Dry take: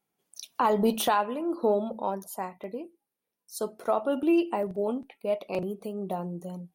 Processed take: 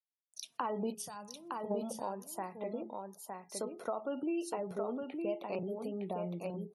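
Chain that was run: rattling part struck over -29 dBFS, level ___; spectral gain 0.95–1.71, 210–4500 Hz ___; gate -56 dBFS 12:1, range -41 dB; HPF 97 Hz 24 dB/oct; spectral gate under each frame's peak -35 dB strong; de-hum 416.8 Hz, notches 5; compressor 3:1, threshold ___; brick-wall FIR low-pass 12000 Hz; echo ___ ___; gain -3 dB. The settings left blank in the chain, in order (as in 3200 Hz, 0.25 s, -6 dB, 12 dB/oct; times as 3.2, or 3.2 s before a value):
-34 dBFS, -19 dB, -33 dBFS, 0.912 s, -4.5 dB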